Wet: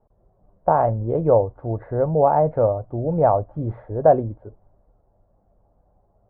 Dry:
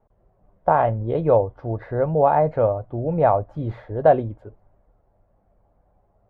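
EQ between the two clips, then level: LPF 1100 Hz 12 dB/oct; +1.0 dB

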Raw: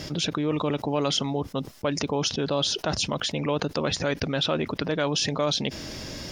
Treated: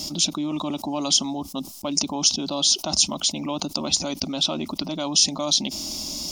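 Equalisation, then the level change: tone controls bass +9 dB, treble +14 dB; low shelf 150 Hz -11 dB; fixed phaser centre 460 Hz, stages 6; +1.0 dB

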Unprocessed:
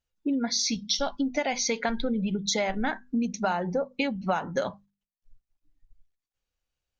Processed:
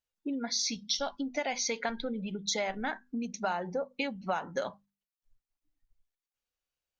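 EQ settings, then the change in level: low shelf 200 Hz -10 dB; -4.0 dB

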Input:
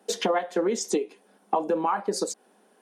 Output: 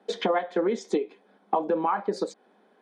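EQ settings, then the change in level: air absorption 87 m; resonant high shelf 4500 Hz -6.5 dB, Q 1.5; notch 2800 Hz, Q 6.9; 0.0 dB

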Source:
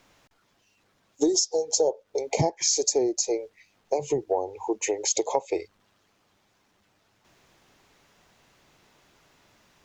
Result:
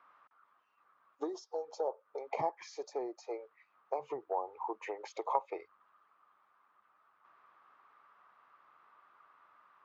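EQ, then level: band-pass 1200 Hz, Q 7.2; air absorption 180 m; +11.0 dB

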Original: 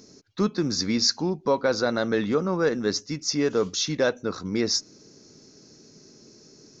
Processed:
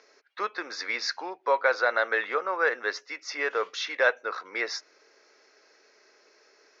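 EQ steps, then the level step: HPF 500 Hz 24 dB/oct; synth low-pass 2000 Hz, resonance Q 1.9; tilt +2 dB/oct; +1.0 dB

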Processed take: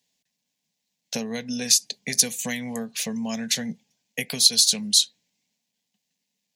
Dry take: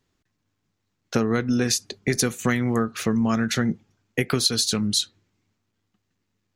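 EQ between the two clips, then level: HPF 86 Hz; tilt shelf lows -7 dB, about 1300 Hz; fixed phaser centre 350 Hz, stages 6; 0.0 dB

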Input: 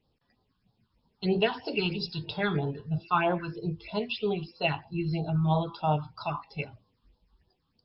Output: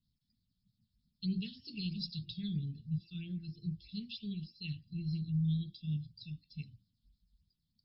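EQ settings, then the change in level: Chebyshev band-stop 210–3800 Hz, order 3; -5.0 dB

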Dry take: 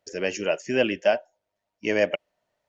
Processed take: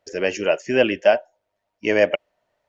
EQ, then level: bell 180 Hz -4 dB 1.4 oct; high shelf 4500 Hz -8.5 dB; +6.0 dB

